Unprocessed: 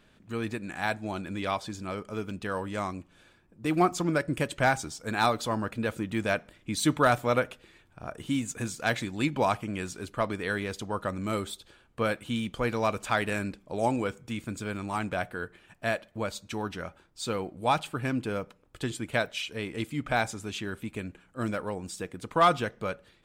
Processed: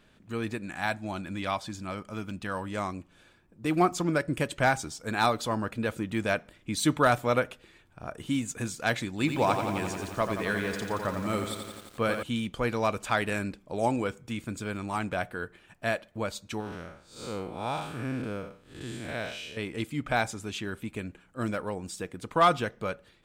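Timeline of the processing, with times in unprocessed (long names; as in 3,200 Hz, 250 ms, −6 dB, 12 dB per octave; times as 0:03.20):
0:00.66–0:02.70: parametric band 430 Hz −8.5 dB 0.37 octaves
0:09.10–0:12.23: feedback echo at a low word length 87 ms, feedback 80%, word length 8 bits, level −7 dB
0:16.60–0:19.57: spectrum smeared in time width 189 ms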